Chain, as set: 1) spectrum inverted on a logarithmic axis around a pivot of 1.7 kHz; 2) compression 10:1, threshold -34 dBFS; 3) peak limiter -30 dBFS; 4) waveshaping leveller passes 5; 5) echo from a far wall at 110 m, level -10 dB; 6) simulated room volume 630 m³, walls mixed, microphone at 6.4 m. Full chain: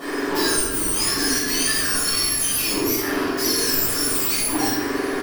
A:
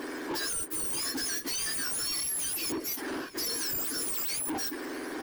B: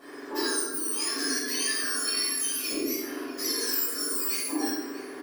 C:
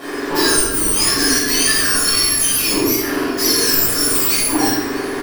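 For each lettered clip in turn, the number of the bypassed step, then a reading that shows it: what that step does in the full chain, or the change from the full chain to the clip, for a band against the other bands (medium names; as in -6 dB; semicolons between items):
6, echo-to-direct 10.0 dB to -12.0 dB; 4, 1 kHz band -2.5 dB; 3, momentary loudness spread change +1 LU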